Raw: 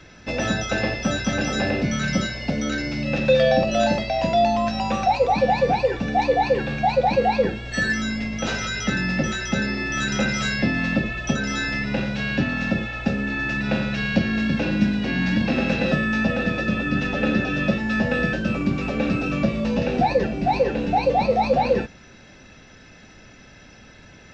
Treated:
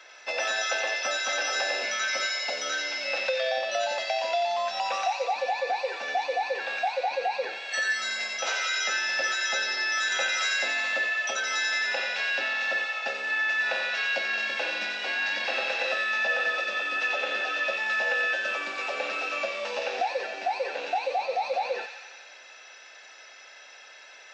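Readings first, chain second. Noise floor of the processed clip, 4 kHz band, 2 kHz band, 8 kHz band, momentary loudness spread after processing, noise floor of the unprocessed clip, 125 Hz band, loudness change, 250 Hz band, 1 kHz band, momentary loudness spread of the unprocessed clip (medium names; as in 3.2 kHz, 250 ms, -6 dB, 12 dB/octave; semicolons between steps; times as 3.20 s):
-49 dBFS, +1.0 dB, 0.0 dB, no reading, 7 LU, -47 dBFS, under -40 dB, -5.0 dB, -30.5 dB, -6.0 dB, 5 LU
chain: high-pass 580 Hz 24 dB/octave; compression, threshold -25 dBFS, peak gain reduction 10 dB; feedback echo behind a high-pass 90 ms, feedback 71%, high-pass 1.8 kHz, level -4 dB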